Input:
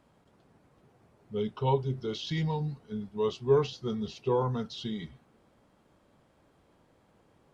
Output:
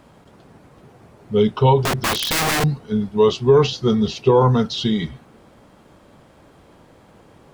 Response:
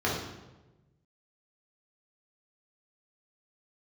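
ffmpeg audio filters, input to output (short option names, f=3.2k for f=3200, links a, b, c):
-filter_complex "[0:a]asettb=1/sr,asplit=3[a][b][c];[a]atrim=end=1.844[d];[b]atrim=start=1.84:end=2.64,asetpts=PTS-STARTPTS,afade=t=in:d=0.004:c=qsin,afade=t=out:st=0.796:d=0.004:c=qsin,aeval=exprs='(mod(33.5*val(0)+1,2)-1)/33.5':c=same[e];[c]atrim=start=2.636[f];[d][e]acrossfade=d=0.004:c1=hsin:c2=qsin[g];[g][f]acrossfade=d=0.004:c1=qsin:c2=hsin,alimiter=level_in=19.5dB:limit=-1dB:release=50:level=0:latency=1,volume=-4dB"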